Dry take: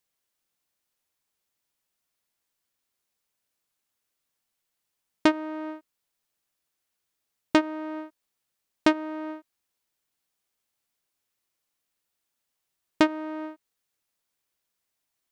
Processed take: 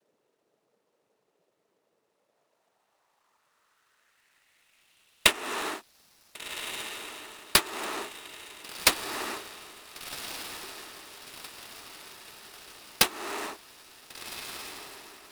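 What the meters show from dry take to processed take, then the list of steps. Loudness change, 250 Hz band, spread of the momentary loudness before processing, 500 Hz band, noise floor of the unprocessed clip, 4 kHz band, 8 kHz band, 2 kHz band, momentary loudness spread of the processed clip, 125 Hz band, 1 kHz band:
−2.0 dB, −15.0 dB, 15 LU, −6.0 dB, −82 dBFS, +11.0 dB, +19.0 dB, +4.0 dB, 21 LU, +3.5 dB, −1.0 dB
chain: cochlear-implant simulation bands 12
downward compressor 6 to 1, threshold −29 dBFS, peak gain reduction 14 dB
band-pass filter sweep 460 Hz → 5,000 Hz, 0:02.02–0:06.00
on a send: feedback delay with all-pass diffusion 1,482 ms, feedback 55%, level −11 dB
on the sum: boost into a limiter +25.5 dB
short delay modulated by noise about 5,300 Hz, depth 0.034 ms

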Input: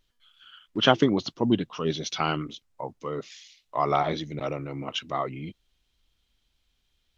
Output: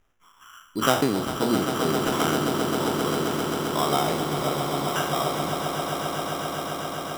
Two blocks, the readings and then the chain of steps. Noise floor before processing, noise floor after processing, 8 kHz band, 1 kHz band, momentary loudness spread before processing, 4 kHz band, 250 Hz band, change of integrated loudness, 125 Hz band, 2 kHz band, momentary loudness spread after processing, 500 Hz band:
−74 dBFS, −56 dBFS, can't be measured, +4.0 dB, 16 LU, +2.0 dB, +3.0 dB, +2.5 dB, +3.0 dB, +5.0 dB, 6 LU, +4.0 dB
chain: peak hold with a decay on every bin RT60 0.55 s
in parallel at 0 dB: downward compressor, threshold −31 dBFS, peak gain reduction 18.5 dB
on the sum: decimation without filtering 10×
mains-hum notches 60/120 Hz
on a send: echo that builds up and dies away 132 ms, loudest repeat 8, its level −9.5 dB
on the sum: level −4.5 dB

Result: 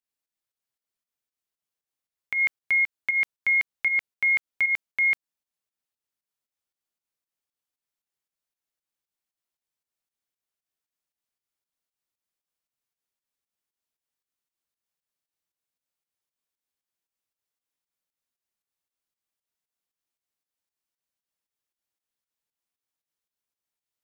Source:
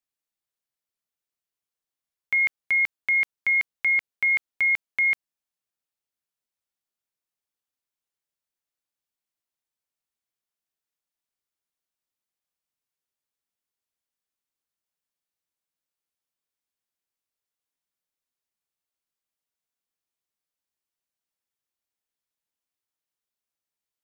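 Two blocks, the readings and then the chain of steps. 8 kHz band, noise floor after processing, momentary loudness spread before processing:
can't be measured, below −85 dBFS, 1 LU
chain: fake sidechain pumping 116 BPM, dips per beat 2, −10 dB, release 157 ms

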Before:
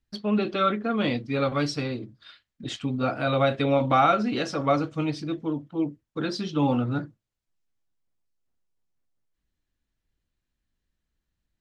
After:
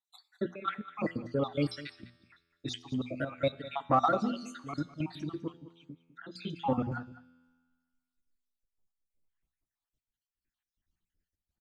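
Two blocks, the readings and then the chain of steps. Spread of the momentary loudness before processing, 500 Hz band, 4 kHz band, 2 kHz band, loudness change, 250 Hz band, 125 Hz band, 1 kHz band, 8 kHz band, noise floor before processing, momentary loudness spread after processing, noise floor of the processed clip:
11 LU, −9.0 dB, −9.5 dB, −10.0 dB, −8.5 dB, −9.0 dB, −9.0 dB, −7.5 dB, −9.0 dB, −84 dBFS, 19 LU, below −85 dBFS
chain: time-frequency cells dropped at random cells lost 64%
mains-hum notches 60/120/180/240 Hz
gate pattern "xxxx.x.xxx" 111 BPM −12 dB
in parallel at −5.5 dB: soft clipping −19.5 dBFS, distortion −13 dB
on the sum: tuned comb filter 84 Hz, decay 1.5 s, harmonics all, mix 50%
auto-filter notch sine 0.35 Hz 440–5,600 Hz
on a send: single-tap delay 203 ms −16.5 dB

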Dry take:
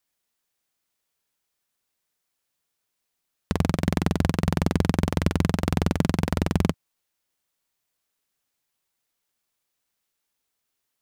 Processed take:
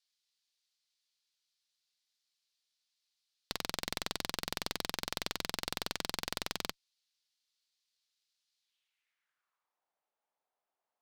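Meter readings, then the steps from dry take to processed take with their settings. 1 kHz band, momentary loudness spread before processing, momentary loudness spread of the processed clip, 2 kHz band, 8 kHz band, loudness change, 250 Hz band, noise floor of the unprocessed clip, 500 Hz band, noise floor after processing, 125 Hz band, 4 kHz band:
−10.0 dB, 3 LU, 2 LU, −6.5 dB, −2.0 dB, −12.5 dB, −23.5 dB, −80 dBFS, −15.0 dB, below −85 dBFS, −28.5 dB, +1.0 dB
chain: band-pass filter sweep 4,300 Hz → 740 Hz, 0:08.58–0:09.88
harmonic generator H 6 −12 dB, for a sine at −17.5 dBFS
level +4.5 dB

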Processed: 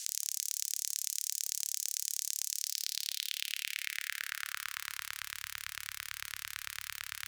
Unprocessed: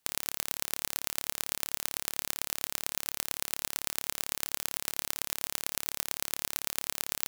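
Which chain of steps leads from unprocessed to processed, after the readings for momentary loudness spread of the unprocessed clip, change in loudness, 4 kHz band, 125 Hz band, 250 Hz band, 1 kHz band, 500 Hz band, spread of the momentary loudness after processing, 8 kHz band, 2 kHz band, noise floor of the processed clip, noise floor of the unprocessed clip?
1 LU, −3.0 dB, −0.5 dB, below −10 dB, below −35 dB, −8.0 dB, below −40 dB, 7 LU, 0.0 dB, +0.5 dB, −58 dBFS, −76 dBFS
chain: in parallel at −5 dB: sine wavefolder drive 20 dB, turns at −1 dBFS
on the sum: band-pass filter sweep 6,400 Hz → 620 Hz, 0:02.49–0:05.42
inverse Chebyshev band-stop filter 200–750 Hz, stop band 50 dB
low-shelf EQ 79 Hz +7.5 dB
on a send: delay with a high-pass on its return 86 ms, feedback 50%, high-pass 4,800 Hz, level −10 dB
on the sum: envelope flattener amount 70%
level +4 dB

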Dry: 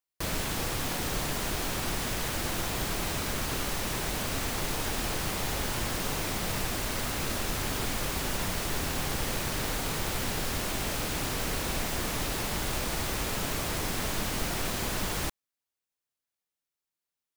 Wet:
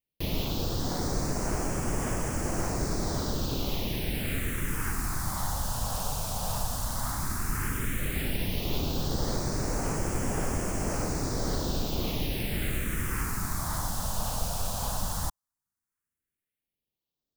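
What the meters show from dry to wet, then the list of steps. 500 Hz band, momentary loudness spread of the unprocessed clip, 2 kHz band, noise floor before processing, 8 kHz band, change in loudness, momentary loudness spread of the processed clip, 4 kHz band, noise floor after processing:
0.0 dB, 0 LU, −4.5 dB, below −85 dBFS, −1.5 dB, −0.5 dB, 1 LU, −4.0 dB, below −85 dBFS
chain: in parallel at −8 dB: sample-and-hold swept by an LFO 24×, swing 160% 1.8 Hz
on the sum: all-pass phaser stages 4, 0.12 Hz, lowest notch 340–3,700 Hz

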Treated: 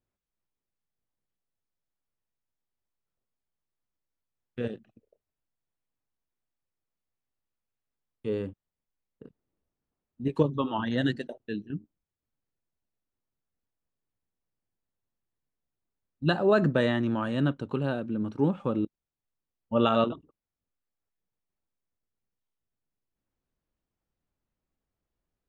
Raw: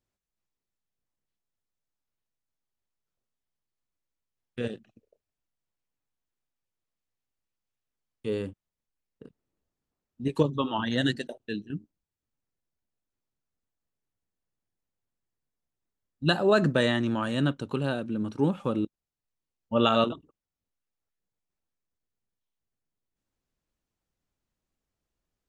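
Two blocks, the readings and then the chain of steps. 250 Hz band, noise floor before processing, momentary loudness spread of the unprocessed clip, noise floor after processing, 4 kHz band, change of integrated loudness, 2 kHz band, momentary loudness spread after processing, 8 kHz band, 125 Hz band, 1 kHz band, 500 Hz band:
0.0 dB, below −85 dBFS, 15 LU, below −85 dBFS, −6.0 dB, −0.5 dB, −2.5 dB, 15 LU, below −10 dB, 0.0 dB, −1.0 dB, −0.5 dB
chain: low-pass filter 1,900 Hz 6 dB per octave

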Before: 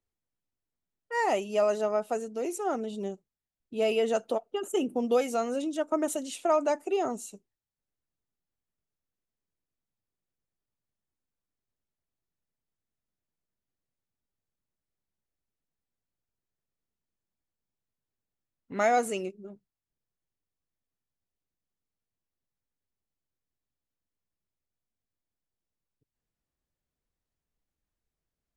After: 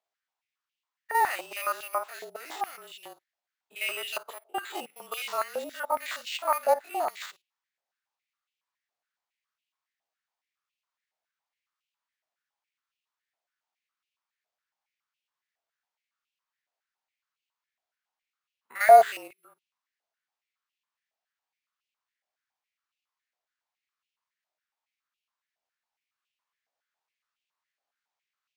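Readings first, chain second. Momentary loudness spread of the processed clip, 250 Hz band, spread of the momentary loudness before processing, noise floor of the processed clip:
21 LU, below −15 dB, 13 LU, below −85 dBFS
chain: spectrum averaged block by block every 50 ms
frequency shifter −32 Hz
bad sample-rate conversion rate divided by 4×, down none, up hold
high-pass on a step sequencer 7.2 Hz 690–2,700 Hz
level +1.5 dB

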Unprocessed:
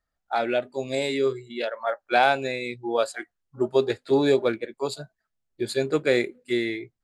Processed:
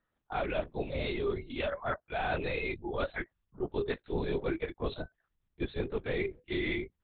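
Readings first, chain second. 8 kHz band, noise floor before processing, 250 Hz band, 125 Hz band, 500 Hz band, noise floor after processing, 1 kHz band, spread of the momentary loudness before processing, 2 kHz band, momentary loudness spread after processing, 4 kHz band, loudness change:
below −35 dB, −82 dBFS, −9.0 dB, −2.0 dB, −10.5 dB, −83 dBFS, −11.5 dB, 11 LU, −8.0 dB, 6 LU, −10.5 dB, −9.5 dB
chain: reversed playback
downward compressor 12 to 1, threshold −29 dBFS, peak gain reduction 15 dB
reversed playback
linear-prediction vocoder at 8 kHz whisper

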